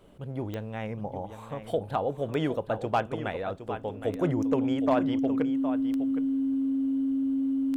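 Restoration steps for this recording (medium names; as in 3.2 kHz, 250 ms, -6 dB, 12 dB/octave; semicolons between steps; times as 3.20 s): clip repair -16.5 dBFS; de-click; band-stop 270 Hz, Q 30; inverse comb 765 ms -10.5 dB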